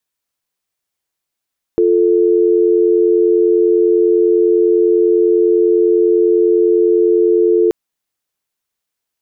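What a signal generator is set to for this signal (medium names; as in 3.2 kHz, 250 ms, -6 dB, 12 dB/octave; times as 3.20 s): call progress tone dial tone, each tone -11.5 dBFS 5.93 s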